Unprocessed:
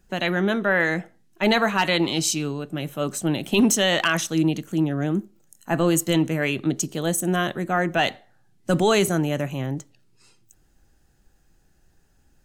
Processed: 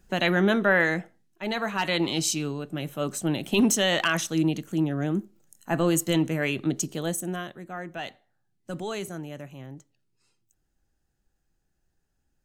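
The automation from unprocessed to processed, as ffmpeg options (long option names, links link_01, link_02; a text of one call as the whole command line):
ffmpeg -i in.wav -af "volume=9.5dB,afade=type=out:start_time=0.65:duration=0.78:silence=0.237137,afade=type=in:start_time=1.43:duration=0.66:silence=0.354813,afade=type=out:start_time=6.91:duration=0.59:silence=0.281838" out.wav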